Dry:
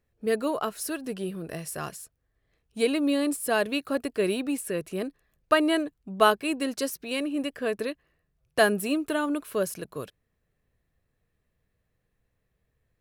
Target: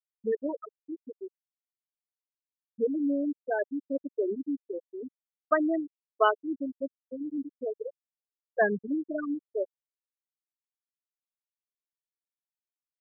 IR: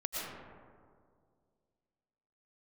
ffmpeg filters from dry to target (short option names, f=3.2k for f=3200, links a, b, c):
-af "bandreject=f=3.8k:w=20,afwtdn=0.02,afftfilt=real='re*gte(hypot(re,im),0.282)':imag='im*gte(hypot(re,im),0.282)':win_size=1024:overlap=0.75,volume=-2.5dB"